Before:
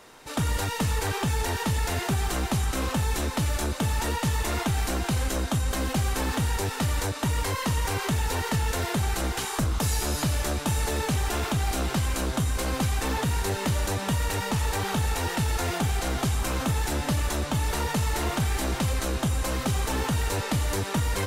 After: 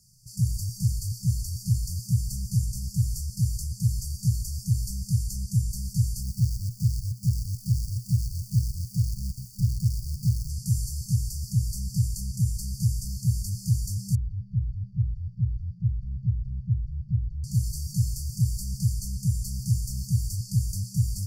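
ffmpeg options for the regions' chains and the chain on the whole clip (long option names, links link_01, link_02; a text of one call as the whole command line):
ffmpeg -i in.wav -filter_complex "[0:a]asettb=1/sr,asplit=3[link_01][link_02][link_03];[link_01]atrim=end=6.234[link_04];[link_02]atrim=start=6.23:end=10.5,asetpts=PTS-STARTPTS,afade=type=in:duration=0.004:curve=qsin,afade=type=out:start_time=4.266:duration=0.004:curve=qsin,lowpass=frequency=3300:width=0.5412,lowpass=frequency=3300:width=1.3066,acrusher=bits=2:mode=log:mix=0:aa=0.000001[link_05];[link_03]atrim=start=10.496[link_06];[link_04][link_05]acrossfade=duration=0.004:curve1=hsin:curve2=qsin[link_07];[link_07][link_06]acrossfade=duration=0.004:curve1=qsin:curve2=hsin,asettb=1/sr,asplit=3[link_08][link_09][link_10];[link_08]atrim=end=14.154[link_11];[link_09]atrim=start=14.15:end=17.44,asetpts=PTS-STARTPTS,afade=type=in:duration=0.004:curve=qsin,afade=type=out:start_time=3.286:duration=0.004:curve=qsin,lowpass=frequency=1800:width=0.5412,lowpass=frequency=1800:width=1.3066,equalizer=frequency=270:width=1.8:gain=-14[link_12];[link_10]atrim=start=17.436[link_13];[link_11][link_12]acrossfade=duration=0.004:curve1=hsin:curve2=qsin[link_14];[link_14][link_13]acrossfade=duration=0.004:curve1=qsin:curve2=hsin,equalizer=frequency=120:width=4.7:gain=13.5,afftfilt=real='re*(1-between(b*sr/4096,200,4400))':imag='im*(1-between(b*sr/4096,200,4400))':win_size=4096:overlap=0.75,volume=-2.5dB" out.wav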